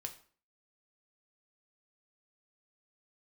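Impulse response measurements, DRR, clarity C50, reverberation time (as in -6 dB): 4.5 dB, 12.5 dB, 0.45 s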